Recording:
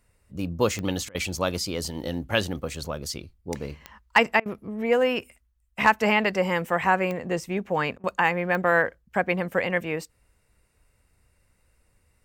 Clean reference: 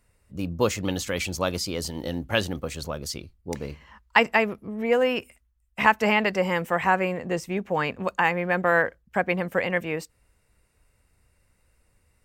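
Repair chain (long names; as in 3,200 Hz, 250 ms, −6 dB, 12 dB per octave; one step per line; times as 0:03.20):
clipped peaks rebuilt −6 dBFS
click removal
repair the gap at 0:01.09/0:04.40/0:07.98, 56 ms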